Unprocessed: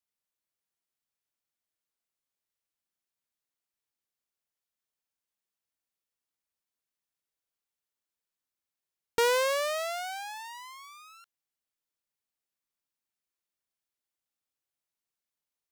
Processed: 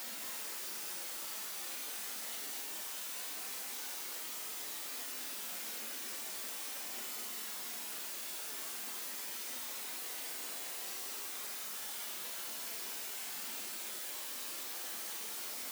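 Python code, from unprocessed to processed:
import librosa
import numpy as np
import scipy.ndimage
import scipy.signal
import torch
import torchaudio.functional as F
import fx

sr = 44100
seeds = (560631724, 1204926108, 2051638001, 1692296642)

p1 = fx.quant_dither(x, sr, seeds[0], bits=6, dither='triangular')
p2 = x + (p1 * librosa.db_to_amplitude(-11.0))
p3 = scipy.signal.sosfilt(scipy.signal.butter(12, 200.0, 'highpass', fs=sr, output='sos'), p2)
p4 = fx.paulstretch(p3, sr, seeds[1], factor=6.0, window_s=0.05, from_s=3.74)
p5 = p4 + fx.echo_single(p4, sr, ms=216, db=-5.5, dry=0)
y = p5 * librosa.db_to_amplitude(3.5)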